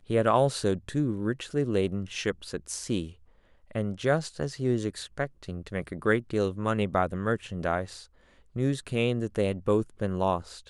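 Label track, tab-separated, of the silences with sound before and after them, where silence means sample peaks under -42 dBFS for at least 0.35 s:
3.120000	3.710000	silence
8.040000	8.560000	silence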